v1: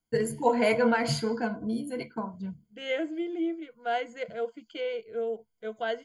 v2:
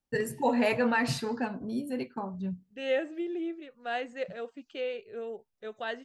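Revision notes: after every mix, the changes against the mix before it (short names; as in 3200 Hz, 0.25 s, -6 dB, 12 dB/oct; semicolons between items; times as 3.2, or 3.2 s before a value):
master: remove ripple EQ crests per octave 1.8, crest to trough 15 dB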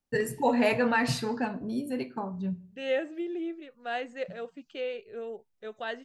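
reverb: on, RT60 0.50 s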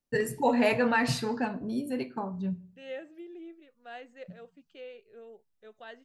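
second voice -11.0 dB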